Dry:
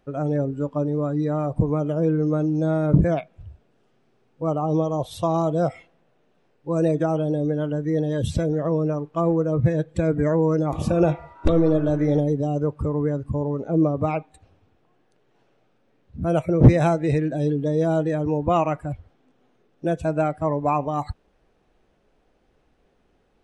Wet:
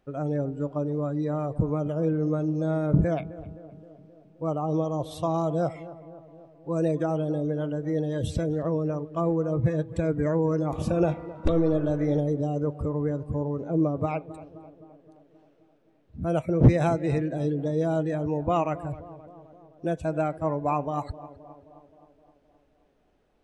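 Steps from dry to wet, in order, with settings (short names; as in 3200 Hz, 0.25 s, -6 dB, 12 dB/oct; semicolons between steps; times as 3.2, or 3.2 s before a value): tape echo 0.262 s, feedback 72%, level -15 dB, low-pass 1200 Hz; gain -4.5 dB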